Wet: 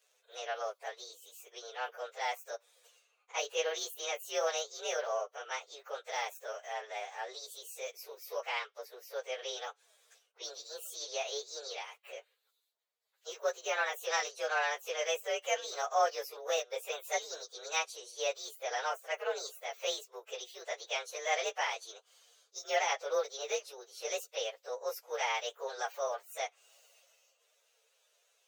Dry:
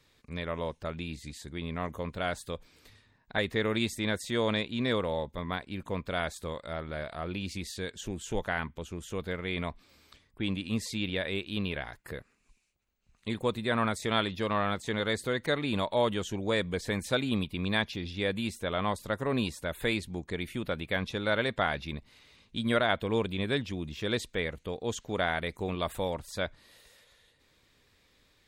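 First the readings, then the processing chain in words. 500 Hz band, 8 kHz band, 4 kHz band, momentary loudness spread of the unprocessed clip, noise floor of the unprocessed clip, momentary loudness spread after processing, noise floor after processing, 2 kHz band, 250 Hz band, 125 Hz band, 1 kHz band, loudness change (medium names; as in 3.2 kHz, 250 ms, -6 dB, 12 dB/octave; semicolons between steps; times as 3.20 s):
-4.0 dB, +5.5 dB, -4.0 dB, 9 LU, -68 dBFS, 12 LU, -76 dBFS, -4.5 dB, under -30 dB, under -40 dB, -1.0 dB, -4.5 dB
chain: frequency axis rescaled in octaves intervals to 120%; steep high-pass 430 Hz 72 dB/octave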